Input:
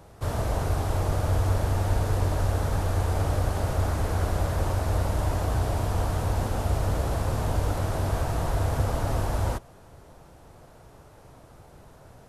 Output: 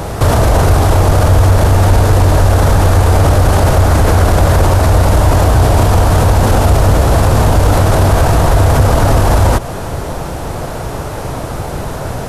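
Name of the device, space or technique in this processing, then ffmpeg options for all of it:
loud club master: -af "acompressor=threshold=-33dB:ratio=1.5,asoftclip=type=hard:threshold=-22dB,alimiter=level_in=30.5dB:limit=-1dB:release=50:level=0:latency=1,volume=-1dB"

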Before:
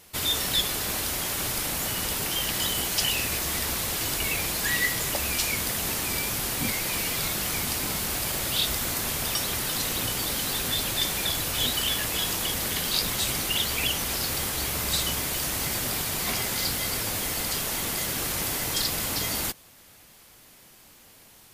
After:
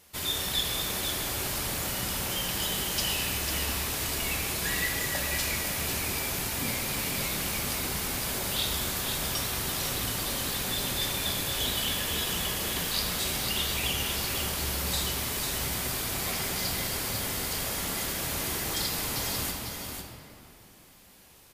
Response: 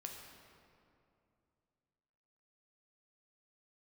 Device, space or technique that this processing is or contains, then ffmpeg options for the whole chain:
stairwell: -filter_complex "[1:a]atrim=start_sample=2205[a];[0:a][a]afir=irnorm=-1:irlink=0,aecho=1:1:497:0.501"

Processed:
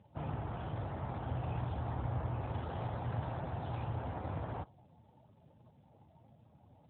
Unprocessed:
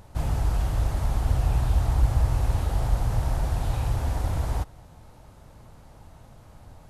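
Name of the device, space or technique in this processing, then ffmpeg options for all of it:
mobile call with aggressive noise cancelling: -filter_complex "[0:a]asplit=3[a][b][c];[a]afade=t=out:st=2.69:d=0.02[d];[b]highshelf=f=3.8k:g=5.5,afade=t=in:st=2.69:d=0.02,afade=t=out:st=3.38:d=0.02[e];[c]afade=t=in:st=3.38:d=0.02[f];[d][e][f]amix=inputs=3:normalize=0,highpass=f=130:p=1,afftdn=nr=17:nf=-48,volume=-5dB" -ar 8000 -c:a libopencore_amrnb -b:a 12200

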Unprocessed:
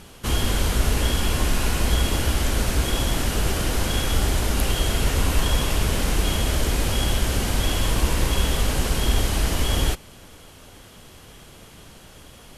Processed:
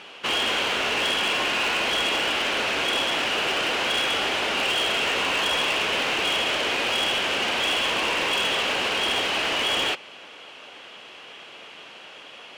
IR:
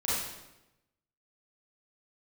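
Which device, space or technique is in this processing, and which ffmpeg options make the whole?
megaphone: -af "highpass=490,lowpass=3.6k,equalizer=f=2.7k:t=o:w=0.55:g=8.5,asoftclip=type=hard:threshold=-24.5dB,volume=5dB"

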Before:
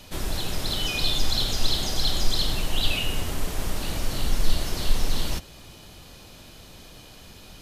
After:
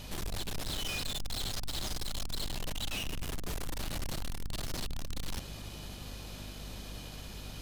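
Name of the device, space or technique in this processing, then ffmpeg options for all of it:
valve amplifier with mains hum: -af "aeval=exprs='(tanh(56.2*val(0)+0.25)-tanh(0.25))/56.2':c=same,aeval=exprs='val(0)+0.00501*(sin(2*PI*50*n/s)+sin(2*PI*2*50*n/s)/2+sin(2*PI*3*50*n/s)/3+sin(2*PI*4*50*n/s)/4+sin(2*PI*5*50*n/s)/5)':c=same,volume=1dB"

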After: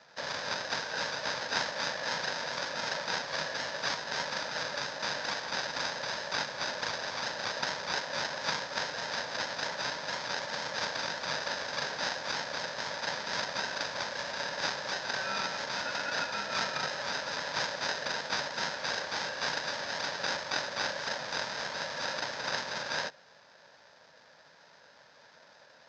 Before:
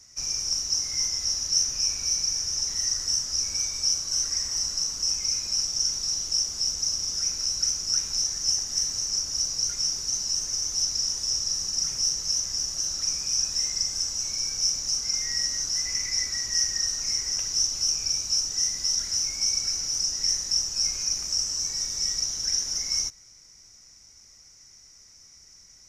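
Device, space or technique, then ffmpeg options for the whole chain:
ring modulator pedal into a guitar cabinet: -af "aeval=exprs='val(0)*sgn(sin(2*PI*570*n/s))':c=same,highpass=110,equalizer=f=150:t=q:w=4:g=4,equalizer=f=350:t=q:w=4:g=-7,equalizer=f=930:t=q:w=4:g=9,equalizer=f=1.6k:t=q:w=4:g=6,equalizer=f=2.8k:t=q:w=4:g=-9,lowpass=f=3.4k:w=0.5412,lowpass=f=3.4k:w=1.3066,volume=3dB"

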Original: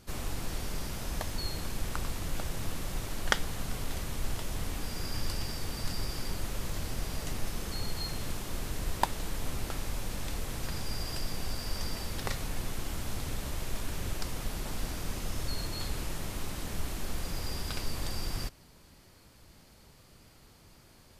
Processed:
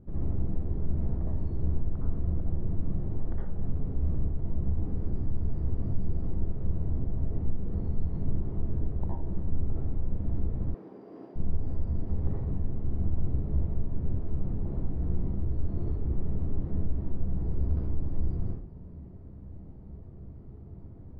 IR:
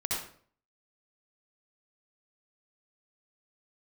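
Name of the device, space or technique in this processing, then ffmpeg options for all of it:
television next door: -filter_complex "[0:a]acompressor=threshold=-37dB:ratio=6,lowpass=350[a];[1:a]atrim=start_sample=2205[b];[a][b]afir=irnorm=-1:irlink=0,asettb=1/sr,asplit=3[c][d][e];[c]atrim=end=10.744[f];[d]atrim=start=10.74:end=11.36,asetpts=PTS-STARTPTS,afade=t=in:d=0.004:c=qsin,afade=t=out:st=0.616:d=0.004:c=qsin,highpass=f=280:w=0.5412,highpass=f=280:w=1.3066[g];[e]atrim=start=11.356[h];[f][g]acrossfade=d=0.004:c1=hsin:c2=qsin[i];[i][h]acrossfade=d=0.004:c1=qsin:c2=hsin,volume=7dB"

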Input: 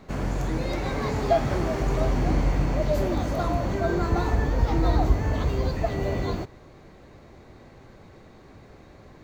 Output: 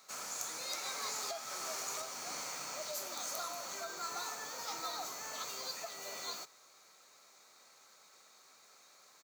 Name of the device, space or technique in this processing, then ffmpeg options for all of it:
laptop speaker: -af "highpass=f=420:w=0.5412,highpass=f=420:w=1.3066,equalizer=f=1.3k:t=o:w=0.2:g=11,equalizer=f=2.4k:t=o:w=0.24:g=8,alimiter=limit=-19dB:level=0:latency=1:release=350,firequalizer=gain_entry='entry(140,0);entry(330,-22);entry(960,-13);entry(2500,-13);entry(4000,0);entry(6400,8)':delay=0.05:min_phase=1,volume=1dB"

